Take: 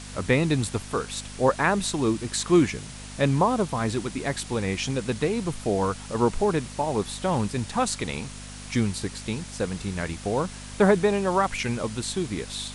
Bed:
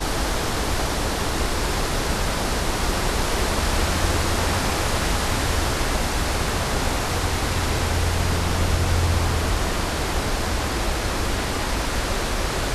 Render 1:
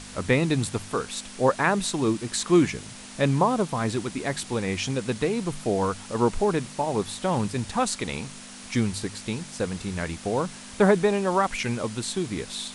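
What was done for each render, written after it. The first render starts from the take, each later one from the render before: de-hum 50 Hz, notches 3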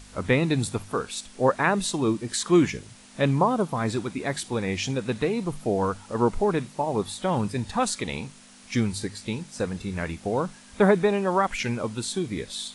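noise print and reduce 8 dB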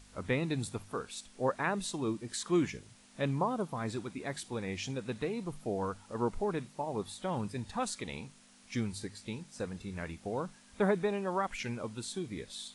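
trim -10 dB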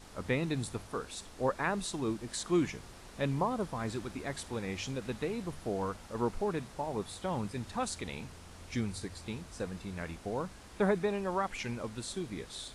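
add bed -29.5 dB

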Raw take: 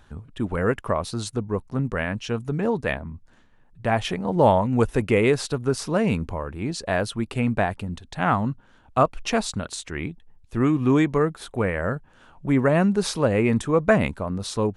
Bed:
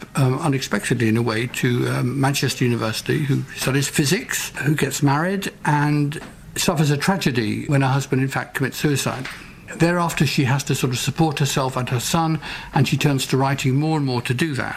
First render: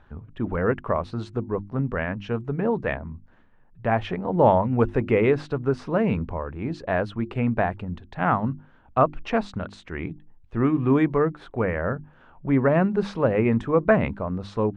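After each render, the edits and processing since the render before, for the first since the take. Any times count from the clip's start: low-pass 2.1 kHz 12 dB/octave; hum notches 50/100/150/200/250/300/350 Hz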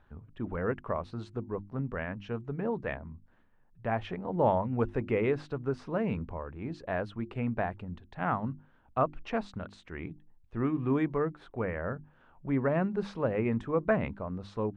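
trim -8.5 dB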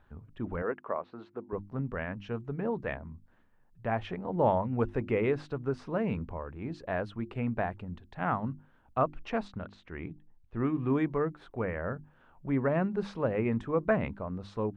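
0.62–1.53 s: band-pass 320–2200 Hz; 9.48–10.60 s: distance through air 120 m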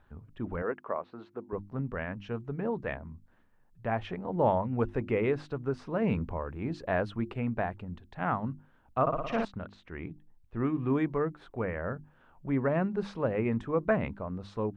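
6.02–7.33 s: gain +3.5 dB; 9.01–9.45 s: flutter echo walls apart 9.8 m, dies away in 1.1 s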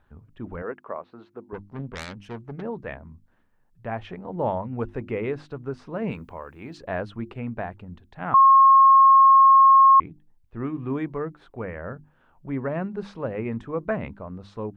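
1.54–2.62 s: self-modulated delay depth 0.44 ms; 6.11–6.78 s: tilt EQ +2.5 dB/octave; 8.34–10.00 s: bleep 1.08 kHz -10 dBFS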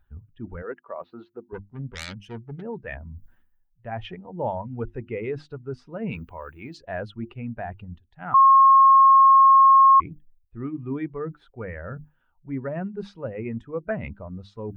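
expander on every frequency bin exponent 1.5; reverse; upward compressor, threshold -27 dBFS; reverse

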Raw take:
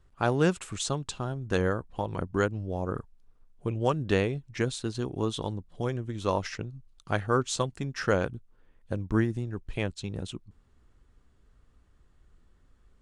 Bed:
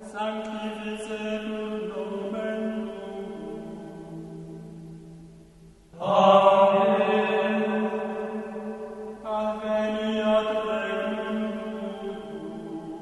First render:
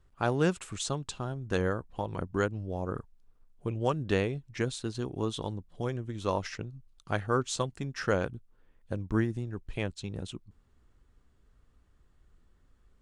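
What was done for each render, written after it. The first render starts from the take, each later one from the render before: trim -2.5 dB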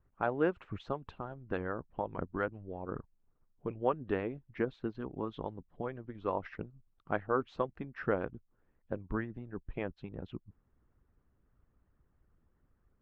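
Bessel low-pass 1.6 kHz, order 4; harmonic-percussive split harmonic -13 dB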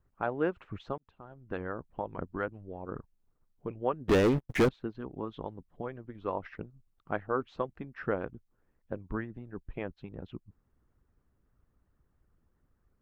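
0.98–1.63 s: fade in; 4.08–4.69 s: waveshaping leveller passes 5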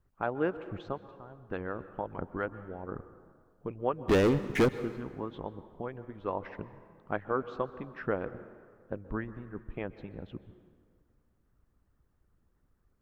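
plate-style reverb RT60 1.9 s, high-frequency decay 0.65×, pre-delay 115 ms, DRR 14 dB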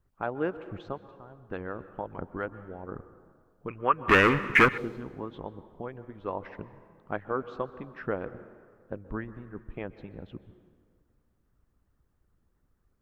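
3.68–4.78 s: high-order bell 1.7 kHz +15 dB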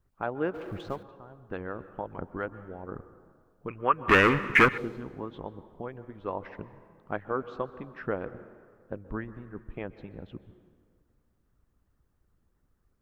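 0.54–1.03 s: companding laws mixed up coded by mu

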